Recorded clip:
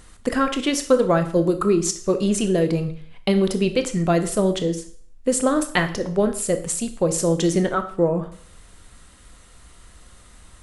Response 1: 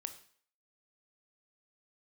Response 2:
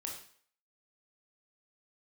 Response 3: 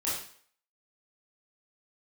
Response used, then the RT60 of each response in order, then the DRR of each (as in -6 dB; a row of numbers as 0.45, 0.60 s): 1; 0.55, 0.55, 0.55 s; 8.5, -0.5, -8.5 dB